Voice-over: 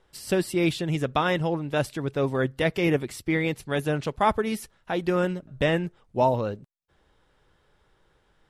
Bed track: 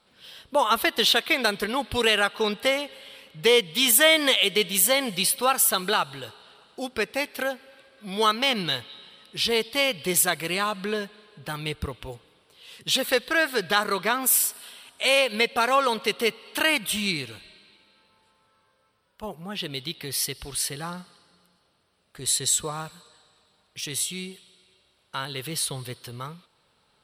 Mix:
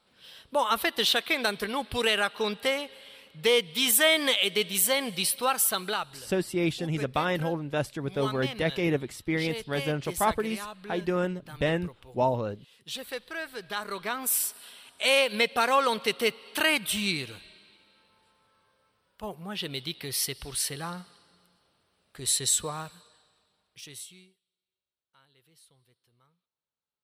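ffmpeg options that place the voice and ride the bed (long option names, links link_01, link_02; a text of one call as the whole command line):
ffmpeg -i stem1.wav -i stem2.wav -filter_complex "[0:a]adelay=6000,volume=-3.5dB[link_01];[1:a]volume=7.5dB,afade=type=out:start_time=5.67:duration=0.65:silence=0.334965,afade=type=in:start_time=13.6:duration=1.48:silence=0.266073,afade=type=out:start_time=22.56:duration=1.81:silence=0.0334965[link_02];[link_01][link_02]amix=inputs=2:normalize=0" out.wav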